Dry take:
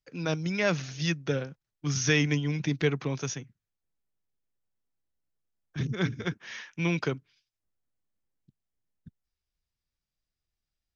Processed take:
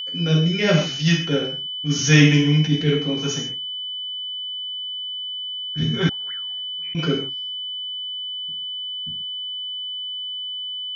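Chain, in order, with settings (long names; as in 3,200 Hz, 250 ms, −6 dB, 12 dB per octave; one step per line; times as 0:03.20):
reverb whose tail is shaped and stops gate 180 ms falling, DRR −4.5 dB
0:06.09–0:06.95: envelope filter 430–2,000 Hz, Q 20, up, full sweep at −18.5 dBFS
rotating-speaker cabinet horn 0.75 Hz
steady tone 3,000 Hz −31 dBFS
level that may rise only so fast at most 170 dB per second
level +4 dB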